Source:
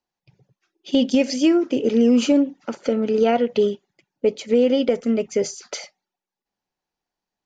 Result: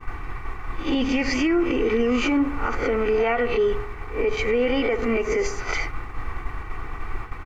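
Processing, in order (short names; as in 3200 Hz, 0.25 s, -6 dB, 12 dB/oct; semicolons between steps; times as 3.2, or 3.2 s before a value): spectral swells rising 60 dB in 0.34 s; added noise brown -31 dBFS; band shelf 1500 Hz +15 dB; notch 1600 Hz, Q 8.8; comb 2.6 ms, depth 60%; on a send: darkening echo 70 ms, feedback 55%, level -17 dB; on the sum: expander -25 dBFS; high shelf 4600 Hz -10.5 dB; limiter -14 dBFS, peak gain reduction 11.5 dB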